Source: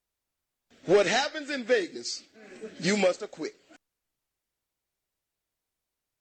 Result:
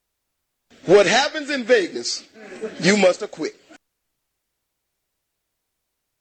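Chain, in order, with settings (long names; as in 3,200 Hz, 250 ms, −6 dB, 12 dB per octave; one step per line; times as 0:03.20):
0:01.84–0:02.91: dynamic equaliser 880 Hz, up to +7 dB, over −53 dBFS, Q 0.71
level +8.5 dB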